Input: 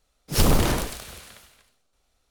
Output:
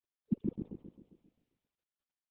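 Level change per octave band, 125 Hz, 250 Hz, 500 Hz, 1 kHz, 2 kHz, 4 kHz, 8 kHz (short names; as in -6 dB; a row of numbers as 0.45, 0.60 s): -19.0 dB, -9.5 dB, -21.0 dB, under -40 dB, under -40 dB, under -40 dB, under -40 dB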